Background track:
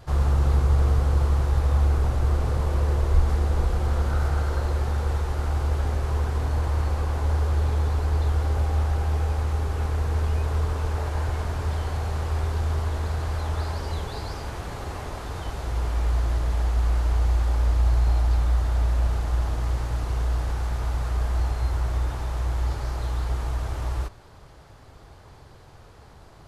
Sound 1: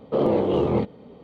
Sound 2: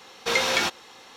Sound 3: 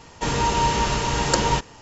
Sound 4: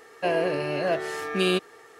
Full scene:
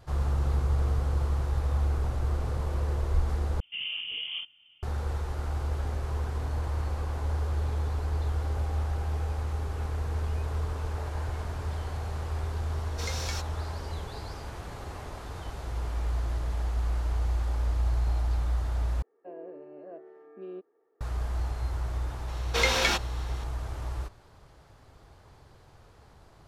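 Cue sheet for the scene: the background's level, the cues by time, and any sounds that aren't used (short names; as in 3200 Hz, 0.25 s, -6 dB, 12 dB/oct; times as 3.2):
background track -6.5 dB
3.6 replace with 1 -14.5 dB + inverted band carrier 3300 Hz
12.72 add 2 -15.5 dB + resonant high shelf 4100 Hz +6.5 dB, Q 1.5
19.02 replace with 4 -7 dB + ladder band-pass 400 Hz, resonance 30%
22.28 add 2 -2 dB
not used: 3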